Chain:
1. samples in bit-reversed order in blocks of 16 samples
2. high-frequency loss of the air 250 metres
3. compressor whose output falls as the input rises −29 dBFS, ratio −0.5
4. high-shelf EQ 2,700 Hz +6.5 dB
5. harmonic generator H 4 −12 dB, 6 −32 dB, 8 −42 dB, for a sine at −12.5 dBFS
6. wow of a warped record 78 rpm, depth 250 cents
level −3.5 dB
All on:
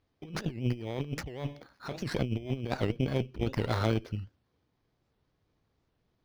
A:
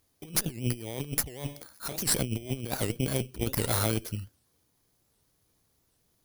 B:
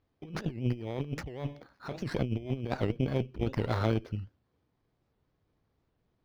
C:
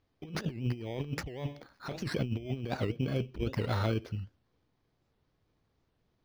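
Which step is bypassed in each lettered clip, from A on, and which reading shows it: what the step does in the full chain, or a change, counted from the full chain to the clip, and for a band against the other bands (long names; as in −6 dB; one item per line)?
2, 8 kHz band +21.0 dB
4, 4 kHz band −4.0 dB
5, change in integrated loudness −1.5 LU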